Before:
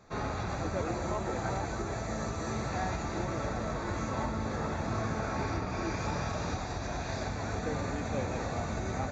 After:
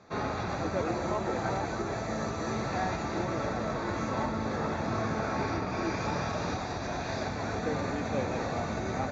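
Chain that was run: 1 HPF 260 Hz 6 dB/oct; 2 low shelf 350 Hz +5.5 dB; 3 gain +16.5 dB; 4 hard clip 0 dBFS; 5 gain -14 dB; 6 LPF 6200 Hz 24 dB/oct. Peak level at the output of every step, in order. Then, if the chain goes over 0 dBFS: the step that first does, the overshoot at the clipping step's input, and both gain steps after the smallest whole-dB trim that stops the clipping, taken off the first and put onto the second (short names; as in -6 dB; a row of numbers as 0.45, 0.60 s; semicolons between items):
-22.5, -20.0, -3.5, -3.5, -17.5, -17.5 dBFS; no overload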